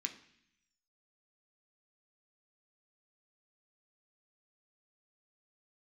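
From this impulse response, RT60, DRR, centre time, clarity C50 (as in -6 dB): 0.65 s, 4.0 dB, 11 ms, 12.5 dB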